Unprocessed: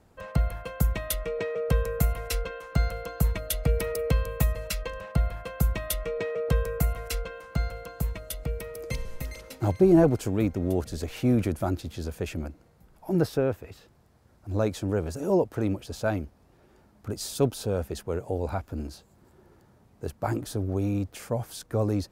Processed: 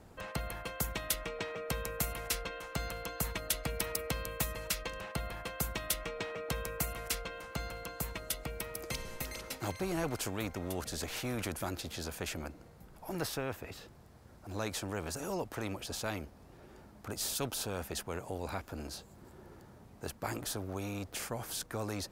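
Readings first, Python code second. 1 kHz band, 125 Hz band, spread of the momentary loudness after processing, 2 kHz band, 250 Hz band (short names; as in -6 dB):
-4.5 dB, -13.5 dB, 12 LU, -2.0 dB, -13.0 dB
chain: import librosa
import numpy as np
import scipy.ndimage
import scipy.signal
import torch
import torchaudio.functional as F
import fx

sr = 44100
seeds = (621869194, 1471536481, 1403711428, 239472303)

y = fx.spectral_comp(x, sr, ratio=2.0)
y = F.gain(torch.from_numpy(y), -6.0).numpy()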